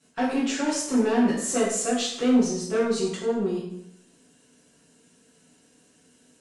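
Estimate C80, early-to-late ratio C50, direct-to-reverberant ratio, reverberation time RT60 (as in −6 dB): 6.0 dB, 3.0 dB, −9.0 dB, 0.75 s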